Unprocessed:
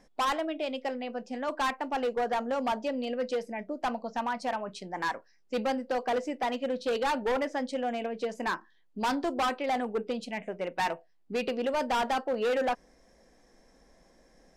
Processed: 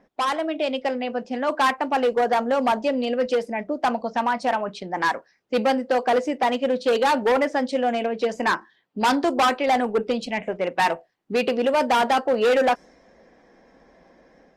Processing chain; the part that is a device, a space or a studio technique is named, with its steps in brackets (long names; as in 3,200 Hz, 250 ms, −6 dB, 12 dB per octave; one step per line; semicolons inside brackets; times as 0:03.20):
low-pass that shuts in the quiet parts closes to 2,700 Hz, open at −26 dBFS
video call (high-pass filter 140 Hz 6 dB per octave; automatic gain control gain up to 5 dB; level +4.5 dB; Opus 24 kbit/s 48,000 Hz)